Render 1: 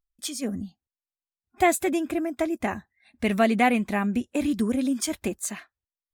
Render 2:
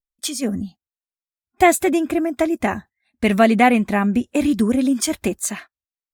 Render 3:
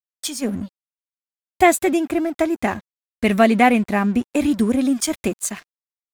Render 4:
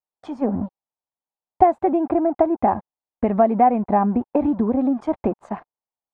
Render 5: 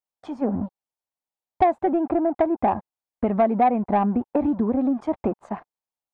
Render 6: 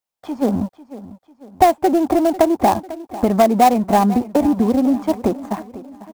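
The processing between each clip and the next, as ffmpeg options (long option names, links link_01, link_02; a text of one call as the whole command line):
ffmpeg -i in.wav -af "agate=range=-16dB:threshold=-45dB:ratio=16:detection=peak,adynamicequalizer=threshold=0.0126:dfrequency=2000:dqfactor=0.7:tfrequency=2000:tqfactor=0.7:attack=5:release=100:ratio=0.375:range=2:mode=cutabove:tftype=highshelf,volume=7dB" out.wav
ffmpeg -i in.wav -af "aeval=exprs='sgn(val(0))*max(abs(val(0))-0.0112,0)':channel_layout=same" out.wav
ffmpeg -i in.wav -af "acompressor=threshold=-20dB:ratio=6,lowpass=frequency=850:width_type=q:width=3.4,volume=2.5dB" out.wav
ffmpeg -i in.wav -af "acontrast=64,volume=-8dB" out.wav
ffmpeg -i in.wav -filter_complex "[0:a]aecho=1:1:497|994|1491|1988:0.15|0.0688|0.0317|0.0146,acrossover=split=470[link_01][link_02];[link_02]acrusher=bits=3:mode=log:mix=0:aa=0.000001[link_03];[link_01][link_03]amix=inputs=2:normalize=0,volume=6dB" out.wav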